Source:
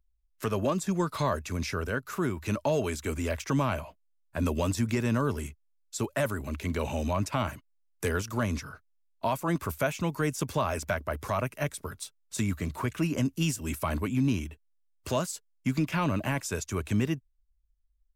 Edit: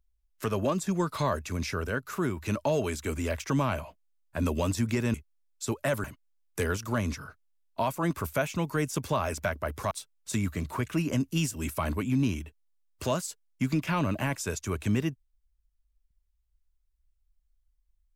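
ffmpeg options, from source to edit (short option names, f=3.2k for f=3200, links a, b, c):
-filter_complex "[0:a]asplit=4[a][b][c][d];[a]atrim=end=5.142[e];[b]atrim=start=5.458:end=6.362[f];[c]atrim=start=7.488:end=11.362[g];[d]atrim=start=11.958[h];[e][f]acrossfade=d=0.004:c1=hsin:c2=hsin[i];[i][g]acrossfade=d=0.004:c1=hsin:c2=hsin[j];[j][h]acrossfade=d=0.004:c1=hsin:c2=hsin"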